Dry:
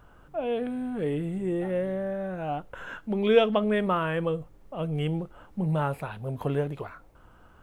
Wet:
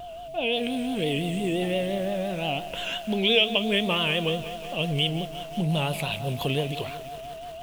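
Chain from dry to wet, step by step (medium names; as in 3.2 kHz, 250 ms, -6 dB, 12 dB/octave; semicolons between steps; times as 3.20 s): resonant high shelf 2.1 kHz +12 dB, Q 3; compression 2:1, threshold -28 dBFS, peak gain reduction 10 dB; whistle 680 Hz -40 dBFS; vibrato 5.8 Hz 82 cents; bit-crushed delay 182 ms, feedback 80%, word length 7-bit, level -14 dB; trim +3.5 dB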